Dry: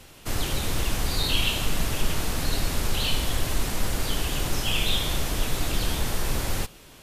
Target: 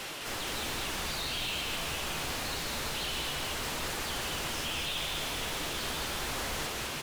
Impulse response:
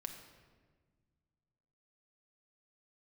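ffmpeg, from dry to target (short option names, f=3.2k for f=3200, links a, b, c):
-filter_complex "[0:a]areverse,acompressor=threshold=-32dB:ratio=6,areverse,asplit=2[a][b];[b]highpass=f=720:p=1,volume=32dB,asoftclip=type=tanh:threshold=-22.5dB[c];[a][c]amix=inputs=2:normalize=0,lowpass=f=4.7k:p=1,volume=-6dB,flanger=delay=4.9:depth=5.6:regen=-49:speed=0.98:shape=triangular,asplit=8[d][e][f][g][h][i][j][k];[e]adelay=207,afreqshift=-81,volume=-3dB[l];[f]adelay=414,afreqshift=-162,volume=-8.4dB[m];[g]adelay=621,afreqshift=-243,volume=-13.7dB[n];[h]adelay=828,afreqshift=-324,volume=-19.1dB[o];[i]adelay=1035,afreqshift=-405,volume=-24.4dB[p];[j]adelay=1242,afreqshift=-486,volume=-29.8dB[q];[k]adelay=1449,afreqshift=-567,volume=-35.1dB[r];[d][l][m][n][o][p][q][r]amix=inputs=8:normalize=0,volume=-2.5dB"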